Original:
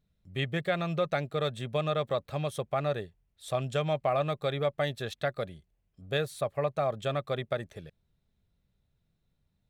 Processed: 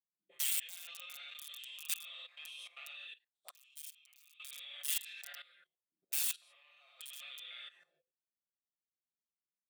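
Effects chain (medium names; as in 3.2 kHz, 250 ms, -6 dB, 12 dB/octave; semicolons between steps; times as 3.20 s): spectrogram pixelated in time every 100 ms; auto-wah 250–2900 Hz, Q 6.5, up, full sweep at -33.5 dBFS; gated-style reverb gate 130 ms rising, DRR -1.5 dB; integer overflow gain 40.5 dB; differentiator; band-stop 480 Hz, Q 12; comb 5.7 ms, depth 88%; level held to a coarse grid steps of 16 dB; 3.51–4.40 s: amplifier tone stack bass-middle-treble 6-0-2; trim +14.5 dB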